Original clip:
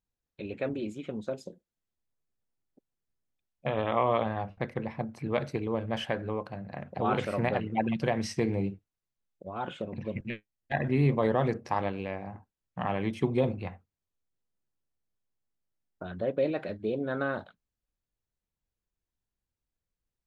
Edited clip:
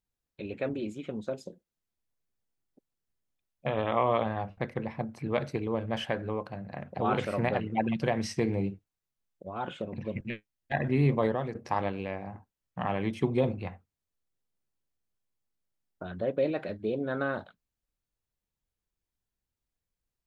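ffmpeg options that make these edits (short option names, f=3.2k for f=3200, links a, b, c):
-filter_complex "[0:a]asplit=2[a][b];[a]atrim=end=11.55,asetpts=PTS-STARTPTS,afade=t=out:st=11.24:d=0.31:c=qua:silence=0.375837[c];[b]atrim=start=11.55,asetpts=PTS-STARTPTS,afade=t=in:d=0.004:c=hsin:silence=0.375837[d];[c][d]concat=n=2:v=0:a=1"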